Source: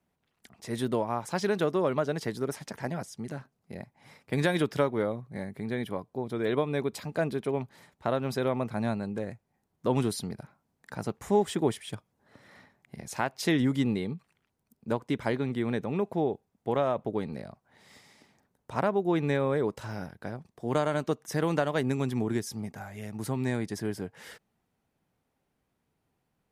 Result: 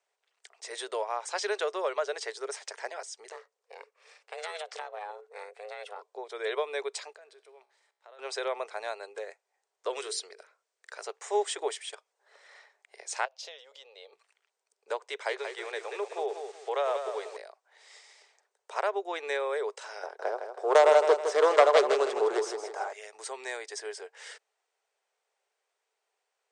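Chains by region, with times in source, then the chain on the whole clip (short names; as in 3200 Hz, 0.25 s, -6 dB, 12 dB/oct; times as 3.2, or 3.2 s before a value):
3.32–6.02 ring modulator 310 Hz + compressor 10:1, threshold -30 dBFS
7.13–8.19 level quantiser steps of 22 dB + resonator 64 Hz, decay 1.2 s, mix 50%
9.89–11.02 bell 830 Hz -9 dB 0.5 oct + notches 50/100/150/200/250/300/350/400/450/500 Hz
13.25–14.13 EQ curve 100 Hz 0 dB, 230 Hz -19 dB, 370 Hz -22 dB, 530 Hz 0 dB, 900 Hz -9 dB, 2000 Hz -16 dB, 2900 Hz -5 dB, 6200 Hz -9 dB, 8900 Hz -22 dB, 13000 Hz +6 dB + compressor 5:1, threshold -39 dBFS
15.01–17.37 steep high-pass 310 Hz 48 dB/oct + lo-fi delay 0.183 s, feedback 35%, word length 8-bit, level -7 dB
20.03–22.93 self-modulated delay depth 0.29 ms + band shelf 540 Hz +12 dB 2.8 oct + feedback echo 0.16 s, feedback 39%, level -8 dB
whole clip: Chebyshev band-pass 410–8700 Hz, order 5; tilt +2 dB/oct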